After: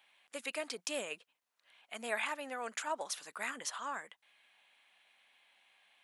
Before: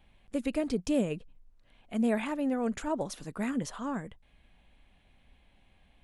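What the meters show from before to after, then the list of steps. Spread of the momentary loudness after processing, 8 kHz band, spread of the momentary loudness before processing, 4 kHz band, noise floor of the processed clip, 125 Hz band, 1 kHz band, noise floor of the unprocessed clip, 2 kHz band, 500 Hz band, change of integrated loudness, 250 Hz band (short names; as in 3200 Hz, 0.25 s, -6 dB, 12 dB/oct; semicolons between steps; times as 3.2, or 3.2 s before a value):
10 LU, +3.5 dB, 9 LU, +3.5 dB, under -85 dBFS, under -25 dB, -1.5 dB, -65 dBFS, +3.0 dB, -8.5 dB, -7.0 dB, -21.5 dB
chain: HPF 1100 Hz 12 dB/oct; gain +3.5 dB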